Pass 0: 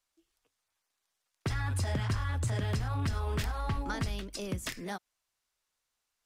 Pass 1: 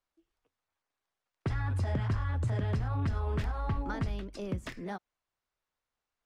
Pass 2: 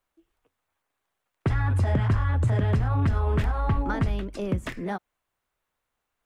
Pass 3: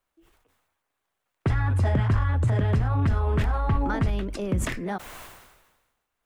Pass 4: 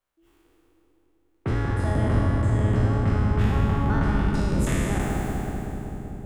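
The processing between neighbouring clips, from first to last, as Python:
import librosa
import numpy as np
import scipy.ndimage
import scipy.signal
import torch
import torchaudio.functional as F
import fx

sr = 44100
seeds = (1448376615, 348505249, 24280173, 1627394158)

y1 = fx.lowpass(x, sr, hz=1300.0, slope=6)
y1 = y1 * 10.0 ** (1.0 / 20.0)
y2 = fx.peak_eq(y1, sr, hz=5000.0, db=-6.5, octaves=0.82)
y2 = y2 * 10.0 ** (8.0 / 20.0)
y3 = fx.sustainer(y2, sr, db_per_s=47.0)
y4 = fx.spec_trails(y3, sr, decay_s=2.91)
y4 = fx.echo_filtered(y4, sr, ms=189, feedback_pct=83, hz=1000.0, wet_db=-3.0)
y4 = y4 * 10.0 ** (-6.0 / 20.0)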